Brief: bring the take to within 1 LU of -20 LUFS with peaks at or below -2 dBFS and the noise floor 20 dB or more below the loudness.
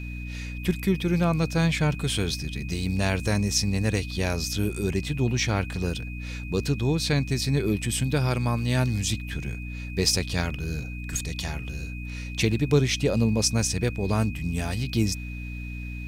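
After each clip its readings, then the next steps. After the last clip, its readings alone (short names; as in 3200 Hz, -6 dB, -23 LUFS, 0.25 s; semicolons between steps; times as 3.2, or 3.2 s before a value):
hum 60 Hz; harmonics up to 300 Hz; hum level -32 dBFS; steady tone 2500 Hz; tone level -41 dBFS; loudness -26.5 LUFS; peak -9.0 dBFS; loudness target -20.0 LUFS
-> de-hum 60 Hz, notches 5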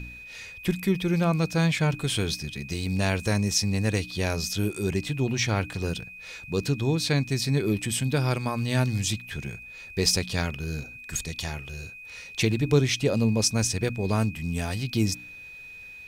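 hum none; steady tone 2500 Hz; tone level -41 dBFS
-> notch 2500 Hz, Q 30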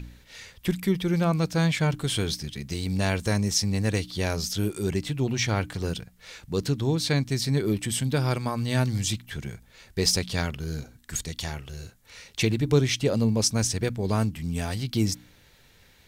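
steady tone none; loudness -26.5 LUFS; peak -9.5 dBFS; loudness target -20.0 LUFS
-> gain +6.5 dB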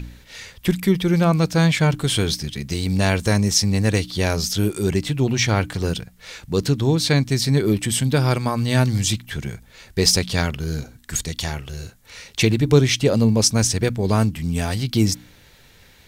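loudness -20.0 LUFS; peak -3.0 dBFS; noise floor -50 dBFS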